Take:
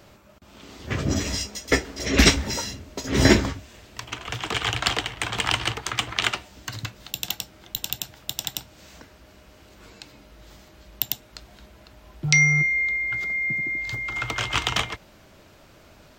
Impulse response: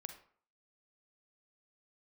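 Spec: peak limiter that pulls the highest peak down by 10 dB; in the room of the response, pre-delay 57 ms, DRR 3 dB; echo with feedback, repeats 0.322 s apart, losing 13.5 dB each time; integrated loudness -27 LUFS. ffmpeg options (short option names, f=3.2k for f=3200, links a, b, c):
-filter_complex "[0:a]alimiter=limit=-11dB:level=0:latency=1,aecho=1:1:322|644:0.211|0.0444,asplit=2[a][b];[1:a]atrim=start_sample=2205,adelay=57[c];[b][c]afir=irnorm=-1:irlink=0,volume=1dB[d];[a][d]amix=inputs=2:normalize=0,volume=-1dB"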